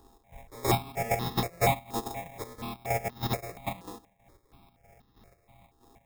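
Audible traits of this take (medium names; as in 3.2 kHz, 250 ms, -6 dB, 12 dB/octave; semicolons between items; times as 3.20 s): a buzz of ramps at a fixed pitch in blocks of 64 samples; chopped level 3.1 Hz, depth 65%, duty 55%; aliases and images of a low sample rate 1.5 kHz, jitter 0%; notches that jump at a steady rate 4.2 Hz 600–2300 Hz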